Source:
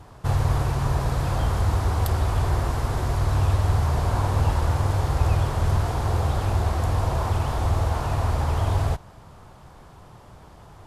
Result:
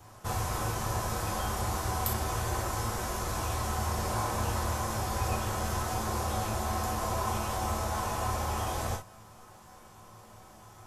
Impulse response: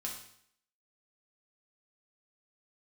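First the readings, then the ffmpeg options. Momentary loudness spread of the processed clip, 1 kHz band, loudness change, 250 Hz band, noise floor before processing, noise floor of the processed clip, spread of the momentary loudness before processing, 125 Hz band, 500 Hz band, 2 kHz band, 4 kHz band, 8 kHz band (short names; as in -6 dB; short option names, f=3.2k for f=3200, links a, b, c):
2 LU, -2.5 dB, -8.0 dB, -5.5 dB, -47 dBFS, -53 dBFS, 3 LU, -12.5 dB, -5.0 dB, -2.5 dB, -1.5 dB, +4.5 dB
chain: -filter_complex "[0:a]lowshelf=f=240:g=-6.5,acrossover=split=160[a][b];[b]aexciter=amount=1.9:drive=6.7:freq=5.7k[c];[a][c]amix=inputs=2:normalize=0[d];[1:a]atrim=start_sample=2205,atrim=end_sample=3087[e];[d][e]afir=irnorm=-1:irlink=0,volume=-2dB"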